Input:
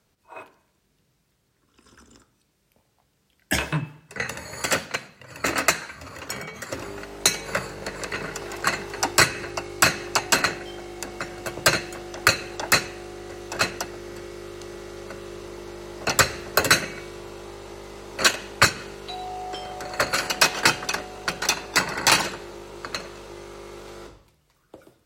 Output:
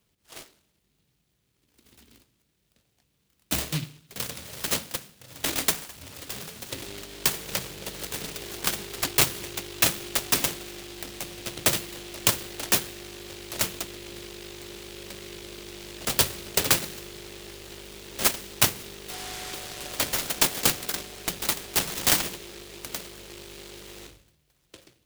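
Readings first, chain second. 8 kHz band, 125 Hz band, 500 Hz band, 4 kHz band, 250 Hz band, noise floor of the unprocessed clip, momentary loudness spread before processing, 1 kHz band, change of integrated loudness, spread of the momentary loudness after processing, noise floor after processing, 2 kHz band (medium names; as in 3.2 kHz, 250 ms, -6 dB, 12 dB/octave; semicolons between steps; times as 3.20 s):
-1.0 dB, -3.0 dB, -6.0 dB, -3.5 dB, -3.5 dB, -68 dBFS, 19 LU, -9.5 dB, -3.0 dB, 19 LU, -72 dBFS, -9.5 dB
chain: delay time shaken by noise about 3.1 kHz, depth 0.31 ms; trim -3.5 dB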